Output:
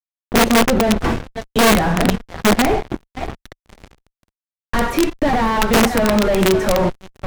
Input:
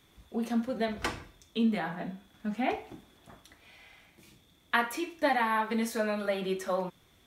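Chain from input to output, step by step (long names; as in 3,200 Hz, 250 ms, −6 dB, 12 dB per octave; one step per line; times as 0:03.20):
in parallel at −0.5 dB: downward compressor 10 to 1, threshold −42 dBFS, peak gain reduction 20 dB
on the sum: high-pass filter 330 Hz 6 dB per octave
on a send: feedback echo with a high-pass in the loop 547 ms, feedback 36%, high-pass 860 Hz, level −11 dB
on the sum: fuzz pedal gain 45 dB, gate −42 dBFS
spectral tilt −4 dB per octave
wrap-around overflow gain 3 dB
level −4 dB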